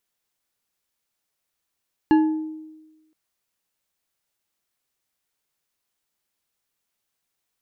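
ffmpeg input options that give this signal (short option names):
-f lavfi -i "aevalsrc='0.282*pow(10,-3*t/1.18)*sin(2*PI*313*t)+0.106*pow(10,-3*t/0.58)*sin(2*PI*862.9*t)+0.0398*pow(10,-3*t/0.362)*sin(2*PI*1691.5*t)+0.015*pow(10,-3*t/0.255)*sin(2*PI*2796*t)+0.00562*pow(10,-3*t/0.192)*sin(2*PI*4175.4*t)':d=1.02:s=44100"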